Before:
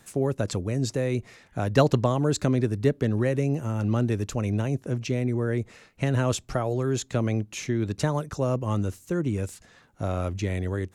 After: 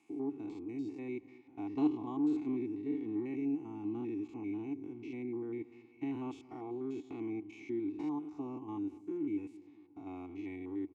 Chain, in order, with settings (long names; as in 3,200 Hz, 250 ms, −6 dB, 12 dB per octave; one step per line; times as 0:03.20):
spectrum averaged block by block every 100 ms
formant filter u
low-shelf EQ 95 Hz −7.5 dB
comb filter 2.7 ms, depth 53%
feedback echo with a low-pass in the loop 230 ms, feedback 56%, low-pass 1,100 Hz, level −18.5 dB